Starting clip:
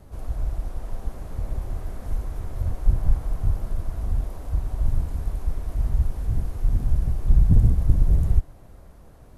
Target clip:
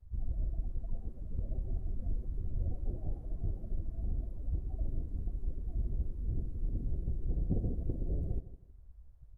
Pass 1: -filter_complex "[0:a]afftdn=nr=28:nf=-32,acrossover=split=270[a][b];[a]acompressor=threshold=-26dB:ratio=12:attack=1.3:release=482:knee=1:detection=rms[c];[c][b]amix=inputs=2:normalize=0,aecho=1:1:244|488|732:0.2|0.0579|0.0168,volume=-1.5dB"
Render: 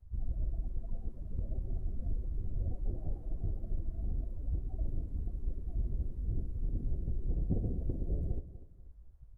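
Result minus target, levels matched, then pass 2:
echo 84 ms late
-filter_complex "[0:a]afftdn=nr=28:nf=-32,acrossover=split=270[a][b];[a]acompressor=threshold=-26dB:ratio=12:attack=1.3:release=482:knee=1:detection=rms[c];[c][b]amix=inputs=2:normalize=0,aecho=1:1:160|320|480:0.2|0.0579|0.0168,volume=-1.5dB"

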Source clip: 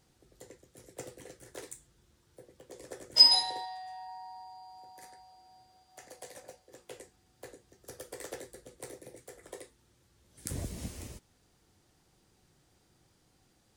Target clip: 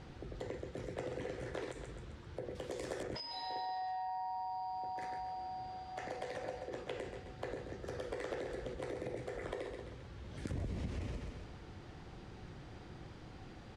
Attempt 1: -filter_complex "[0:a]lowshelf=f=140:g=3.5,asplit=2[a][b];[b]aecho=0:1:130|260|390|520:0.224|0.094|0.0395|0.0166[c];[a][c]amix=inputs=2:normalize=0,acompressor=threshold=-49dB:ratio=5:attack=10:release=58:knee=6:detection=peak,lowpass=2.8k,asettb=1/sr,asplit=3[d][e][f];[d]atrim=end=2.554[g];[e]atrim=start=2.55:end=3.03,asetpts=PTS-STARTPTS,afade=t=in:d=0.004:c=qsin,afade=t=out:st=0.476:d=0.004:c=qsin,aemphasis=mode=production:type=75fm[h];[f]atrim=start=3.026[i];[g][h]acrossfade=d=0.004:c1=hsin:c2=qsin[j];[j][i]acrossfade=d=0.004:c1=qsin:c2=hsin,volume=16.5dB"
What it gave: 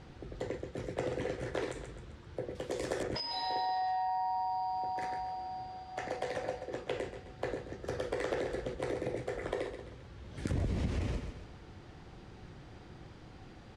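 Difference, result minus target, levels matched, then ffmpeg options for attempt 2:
compressor: peak gain reduction -7 dB
-filter_complex "[0:a]lowshelf=f=140:g=3.5,asplit=2[a][b];[b]aecho=0:1:130|260|390|520:0.224|0.094|0.0395|0.0166[c];[a][c]amix=inputs=2:normalize=0,acompressor=threshold=-57.5dB:ratio=5:attack=10:release=58:knee=6:detection=peak,lowpass=2.8k,asettb=1/sr,asplit=3[d][e][f];[d]atrim=end=2.554[g];[e]atrim=start=2.55:end=3.03,asetpts=PTS-STARTPTS,afade=t=in:d=0.004:c=qsin,afade=t=out:st=0.476:d=0.004:c=qsin,aemphasis=mode=production:type=75fm[h];[f]atrim=start=3.026[i];[g][h]acrossfade=d=0.004:c1=hsin:c2=qsin[j];[j][i]acrossfade=d=0.004:c1=qsin:c2=hsin,volume=16.5dB"

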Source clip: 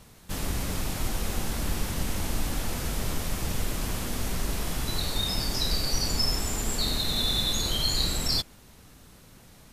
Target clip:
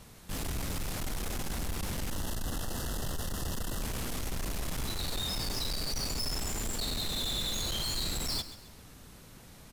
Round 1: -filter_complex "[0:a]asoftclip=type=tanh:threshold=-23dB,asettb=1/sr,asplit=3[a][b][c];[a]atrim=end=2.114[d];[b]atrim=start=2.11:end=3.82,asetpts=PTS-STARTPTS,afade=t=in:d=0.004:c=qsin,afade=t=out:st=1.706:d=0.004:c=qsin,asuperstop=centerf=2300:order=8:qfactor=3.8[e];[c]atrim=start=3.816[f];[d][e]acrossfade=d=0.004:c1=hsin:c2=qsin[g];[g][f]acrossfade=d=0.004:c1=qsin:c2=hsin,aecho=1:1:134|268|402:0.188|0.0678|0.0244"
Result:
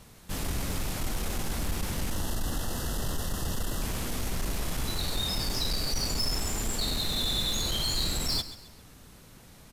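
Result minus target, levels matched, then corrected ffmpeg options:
soft clip: distortion -6 dB
-filter_complex "[0:a]asoftclip=type=tanh:threshold=-30.5dB,asettb=1/sr,asplit=3[a][b][c];[a]atrim=end=2.114[d];[b]atrim=start=2.11:end=3.82,asetpts=PTS-STARTPTS,afade=t=in:d=0.004:c=qsin,afade=t=out:st=1.706:d=0.004:c=qsin,asuperstop=centerf=2300:order=8:qfactor=3.8[e];[c]atrim=start=3.816[f];[d][e]acrossfade=d=0.004:c1=hsin:c2=qsin[g];[g][f]acrossfade=d=0.004:c1=qsin:c2=hsin,aecho=1:1:134|268|402:0.188|0.0678|0.0244"

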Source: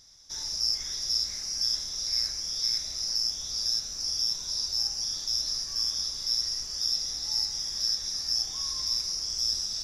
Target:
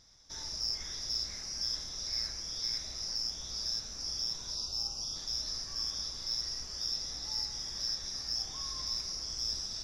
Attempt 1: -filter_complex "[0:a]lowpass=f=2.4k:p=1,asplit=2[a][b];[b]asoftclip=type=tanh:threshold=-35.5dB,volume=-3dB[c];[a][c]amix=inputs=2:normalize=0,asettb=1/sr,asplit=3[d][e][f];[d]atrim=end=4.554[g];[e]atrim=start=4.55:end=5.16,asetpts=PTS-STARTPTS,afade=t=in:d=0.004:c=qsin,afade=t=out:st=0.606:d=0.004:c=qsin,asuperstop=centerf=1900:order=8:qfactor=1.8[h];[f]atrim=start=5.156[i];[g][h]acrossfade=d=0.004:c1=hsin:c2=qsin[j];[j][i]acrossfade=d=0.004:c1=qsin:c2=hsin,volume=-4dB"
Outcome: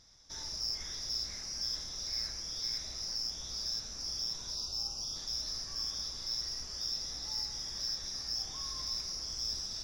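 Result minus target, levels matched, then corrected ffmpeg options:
soft clip: distortion +14 dB
-filter_complex "[0:a]lowpass=f=2.4k:p=1,asplit=2[a][b];[b]asoftclip=type=tanh:threshold=-24dB,volume=-3dB[c];[a][c]amix=inputs=2:normalize=0,asettb=1/sr,asplit=3[d][e][f];[d]atrim=end=4.554[g];[e]atrim=start=4.55:end=5.16,asetpts=PTS-STARTPTS,afade=t=in:d=0.004:c=qsin,afade=t=out:st=0.606:d=0.004:c=qsin,asuperstop=centerf=1900:order=8:qfactor=1.8[h];[f]atrim=start=5.156[i];[g][h]acrossfade=d=0.004:c1=hsin:c2=qsin[j];[j][i]acrossfade=d=0.004:c1=qsin:c2=hsin,volume=-4dB"

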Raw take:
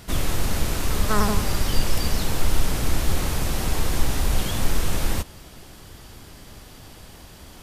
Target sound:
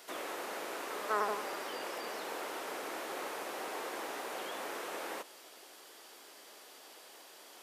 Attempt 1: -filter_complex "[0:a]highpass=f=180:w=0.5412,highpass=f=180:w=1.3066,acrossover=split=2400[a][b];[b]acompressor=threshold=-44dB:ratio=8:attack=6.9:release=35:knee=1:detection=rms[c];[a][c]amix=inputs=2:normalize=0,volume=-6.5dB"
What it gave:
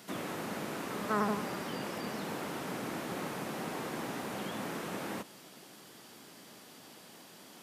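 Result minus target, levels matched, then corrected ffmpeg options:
250 Hz band +9.5 dB
-filter_complex "[0:a]highpass=f=380:w=0.5412,highpass=f=380:w=1.3066,acrossover=split=2400[a][b];[b]acompressor=threshold=-44dB:ratio=8:attack=6.9:release=35:knee=1:detection=rms[c];[a][c]amix=inputs=2:normalize=0,volume=-6.5dB"

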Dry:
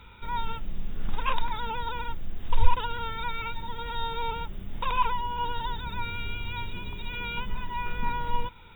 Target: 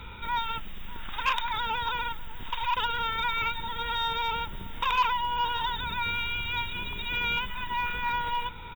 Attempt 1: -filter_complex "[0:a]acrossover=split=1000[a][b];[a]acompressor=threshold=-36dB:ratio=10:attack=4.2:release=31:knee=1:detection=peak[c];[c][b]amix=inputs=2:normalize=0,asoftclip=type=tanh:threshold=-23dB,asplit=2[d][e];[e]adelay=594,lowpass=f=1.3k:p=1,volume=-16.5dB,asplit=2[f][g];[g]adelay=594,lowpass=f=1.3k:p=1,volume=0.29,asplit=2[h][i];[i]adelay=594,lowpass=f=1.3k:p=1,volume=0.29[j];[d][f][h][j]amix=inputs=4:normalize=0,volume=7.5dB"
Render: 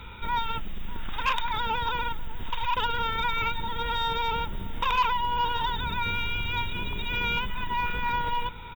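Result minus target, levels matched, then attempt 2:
compressor: peak gain reduction -6.5 dB
-filter_complex "[0:a]acrossover=split=1000[a][b];[a]acompressor=threshold=-43dB:ratio=10:attack=4.2:release=31:knee=1:detection=peak[c];[c][b]amix=inputs=2:normalize=0,asoftclip=type=tanh:threshold=-23dB,asplit=2[d][e];[e]adelay=594,lowpass=f=1.3k:p=1,volume=-16.5dB,asplit=2[f][g];[g]adelay=594,lowpass=f=1.3k:p=1,volume=0.29,asplit=2[h][i];[i]adelay=594,lowpass=f=1.3k:p=1,volume=0.29[j];[d][f][h][j]amix=inputs=4:normalize=0,volume=7.5dB"

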